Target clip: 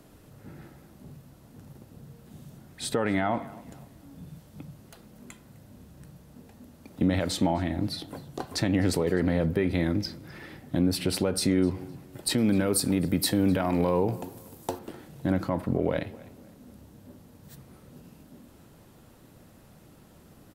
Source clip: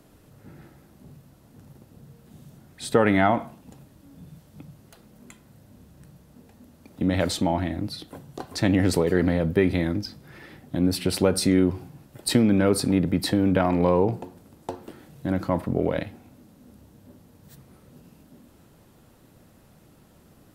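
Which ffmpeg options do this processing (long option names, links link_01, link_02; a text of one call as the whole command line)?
ffmpeg -i in.wav -filter_complex "[0:a]asettb=1/sr,asplit=3[link_01][link_02][link_03];[link_01]atrim=end=12.384[link_04];[link_02]atrim=start=12.38:end=14.79,asetpts=PTS-STARTPTS,afade=type=in:duration=0.004:curve=qsin,afade=type=out:start_time=2.406:duration=0.004:curve=qsin,aemphasis=mode=production:type=50kf[link_05];[link_03]atrim=start=14.786[link_06];[link_04][link_05]acrossfade=duration=0.004:curve1=hsin:curve2=qsin[link_07];[link_07][link_06]acrossfade=duration=0.004:curve1=qsin:curve2=hsin,alimiter=limit=-15.5dB:level=0:latency=1:release=295,asplit=2[link_08][link_09];[link_09]adelay=255,lowpass=frequency=4700:poles=1,volume=-21dB,asplit=2[link_10][link_11];[link_11]adelay=255,lowpass=frequency=4700:poles=1,volume=0.36,asplit=2[link_12][link_13];[link_13]adelay=255,lowpass=frequency=4700:poles=1,volume=0.36[link_14];[link_08][link_10][link_12][link_14]amix=inputs=4:normalize=0,volume=1dB" out.wav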